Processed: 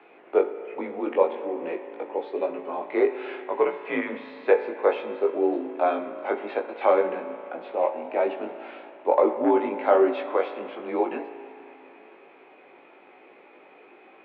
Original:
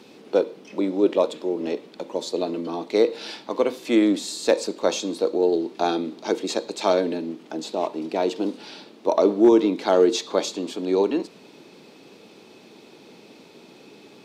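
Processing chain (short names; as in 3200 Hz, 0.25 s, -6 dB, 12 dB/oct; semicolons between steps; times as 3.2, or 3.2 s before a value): spring tank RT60 3.2 s, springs 36 ms, chirp 75 ms, DRR 10 dB; mistuned SSB -69 Hz 520–2500 Hz; chorus 1.2 Hz, delay 18 ms, depth 2.8 ms; gain +5.5 dB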